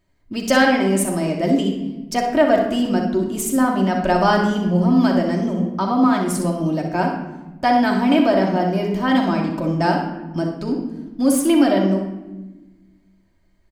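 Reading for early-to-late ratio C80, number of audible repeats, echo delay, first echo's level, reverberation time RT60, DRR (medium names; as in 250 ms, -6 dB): 7.5 dB, 1, 62 ms, -8.5 dB, 1.1 s, -1.0 dB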